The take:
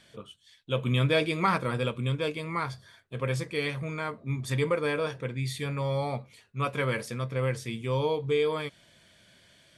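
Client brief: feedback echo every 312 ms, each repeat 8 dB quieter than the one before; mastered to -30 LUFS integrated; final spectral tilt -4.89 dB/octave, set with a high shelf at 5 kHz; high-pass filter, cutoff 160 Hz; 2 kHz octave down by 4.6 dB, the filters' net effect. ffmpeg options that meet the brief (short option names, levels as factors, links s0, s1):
-af "highpass=160,equalizer=f=2000:t=o:g=-5,highshelf=f=5000:g=-4.5,aecho=1:1:312|624|936|1248|1560:0.398|0.159|0.0637|0.0255|0.0102,volume=1.19"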